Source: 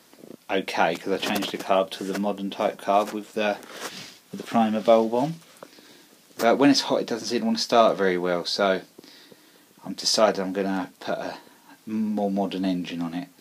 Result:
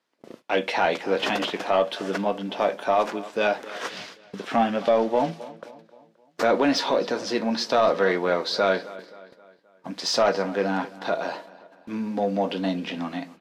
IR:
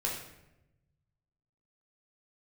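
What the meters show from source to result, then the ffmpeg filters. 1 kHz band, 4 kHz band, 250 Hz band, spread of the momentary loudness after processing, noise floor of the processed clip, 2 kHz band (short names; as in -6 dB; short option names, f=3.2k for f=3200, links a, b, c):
+0.5 dB, -1.5 dB, -3.0 dB, 13 LU, -59 dBFS, +2.0 dB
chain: -filter_complex "[0:a]agate=range=-23dB:threshold=-45dB:ratio=16:detection=peak,alimiter=limit=-11.5dB:level=0:latency=1:release=30,highshelf=f=10k:g=-9,asplit=2[a][b];[b]adelay=263,lowpass=f=4.4k:p=1,volume=-19dB,asplit=2[c][d];[d]adelay=263,lowpass=f=4.4k:p=1,volume=0.48,asplit=2[e][f];[f]adelay=263,lowpass=f=4.4k:p=1,volume=0.48,asplit=2[g][h];[h]adelay=263,lowpass=f=4.4k:p=1,volume=0.48[i];[a][c][e][g][i]amix=inputs=5:normalize=0,asplit=2[j][k];[k]highpass=f=720:p=1,volume=9dB,asoftclip=type=tanh:threshold=-10.5dB[l];[j][l]amix=inputs=2:normalize=0,lowpass=f=2.7k:p=1,volume=-6dB,asplit=2[m][n];[1:a]atrim=start_sample=2205,atrim=end_sample=3528[o];[n][o]afir=irnorm=-1:irlink=0,volume=-18dB[p];[m][p]amix=inputs=2:normalize=0"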